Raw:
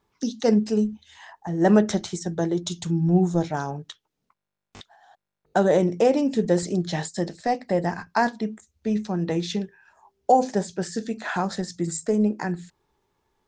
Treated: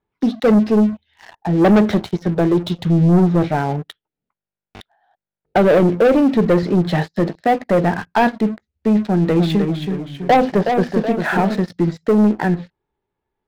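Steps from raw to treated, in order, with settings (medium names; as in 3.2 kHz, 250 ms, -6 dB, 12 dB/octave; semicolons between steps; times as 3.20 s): Bessel low-pass 2.5 kHz, order 8; peaking EQ 1.1 kHz -6.5 dB 0.32 oct; waveshaping leveller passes 3; 9.09–11.59 s: ever faster or slower copies 298 ms, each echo -1 st, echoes 3, each echo -6 dB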